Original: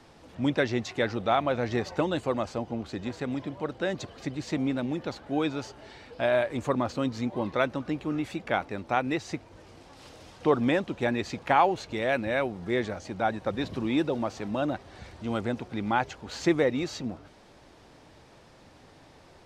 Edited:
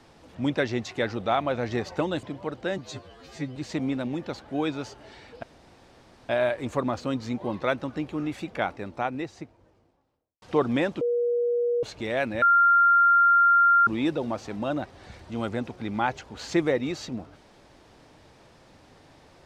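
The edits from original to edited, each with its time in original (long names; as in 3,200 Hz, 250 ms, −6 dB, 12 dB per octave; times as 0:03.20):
0:02.23–0:03.40: remove
0:03.95–0:04.34: time-stretch 2×
0:06.21: splice in room tone 0.86 s
0:08.41–0:10.34: fade out and dull
0:10.93–0:11.75: beep over 479 Hz −21.5 dBFS
0:12.34–0:13.79: beep over 1,390 Hz −15 dBFS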